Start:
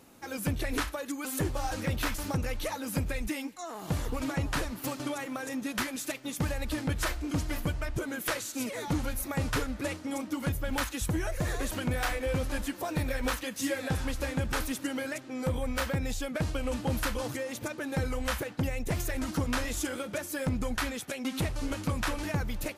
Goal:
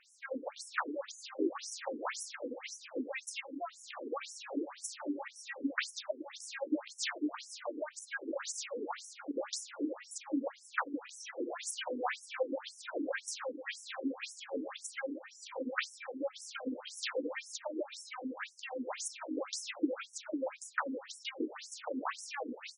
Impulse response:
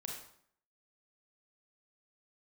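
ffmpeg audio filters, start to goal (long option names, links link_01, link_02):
-filter_complex "[0:a]asplit=2[link_01][link_02];[link_02]adelay=117,lowpass=frequency=1300:poles=1,volume=-9dB,asplit=2[link_03][link_04];[link_04]adelay=117,lowpass=frequency=1300:poles=1,volume=0.43,asplit=2[link_05][link_06];[link_06]adelay=117,lowpass=frequency=1300:poles=1,volume=0.43,asplit=2[link_07][link_08];[link_08]adelay=117,lowpass=frequency=1300:poles=1,volume=0.43,asplit=2[link_09][link_10];[link_10]adelay=117,lowpass=frequency=1300:poles=1,volume=0.43[link_11];[link_03][link_05][link_07][link_09][link_11]amix=inputs=5:normalize=0[link_12];[link_01][link_12]amix=inputs=2:normalize=0,afftfilt=real='re*between(b*sr/1024,320*pow(7700/320,0.5+0.5*sin(2*PI*1.9*pts/sr))/1.41,320*pow(7700/320,0.5+0.5*sin(2*PI*1.9*pts/sr))*1.41)':imag='im*between(b*sr/1024,320*pow(7700/320,0.5+0.5*sin(2*PI*1.9*pts/sr))/1.41,320*pow(7700/320,0.5+0.5*sin(2*PI*1.9*pts/sr))*1.41)':win_size=1024:overlap=0.75,volume=3dB"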